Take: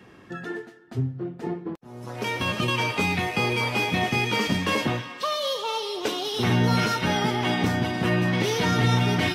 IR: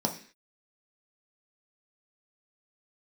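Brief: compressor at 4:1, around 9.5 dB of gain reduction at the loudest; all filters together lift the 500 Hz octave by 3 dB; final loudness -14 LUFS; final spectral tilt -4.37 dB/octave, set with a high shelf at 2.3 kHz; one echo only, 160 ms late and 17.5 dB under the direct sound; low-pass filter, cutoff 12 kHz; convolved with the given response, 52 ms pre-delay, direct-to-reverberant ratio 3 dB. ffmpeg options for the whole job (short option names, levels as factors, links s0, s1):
-filter_complex "[0:a]lowpass=12000,equalizer=f=500:t=o:g=3.5,highshelf=f=2300:g=5.5,acompressor=threshold=0.0398:ratio=4,aecho=1:1:160:0.133,asplit=2[s0][s1];[1:a]atrim=start_sample=2205,adelay=52[s2];[s1][s2]afir=irnorm=-1:irlink=0,volume=0.299[s3];[s0][s3]amix=inputs=2:normalize=0,volume=4.47"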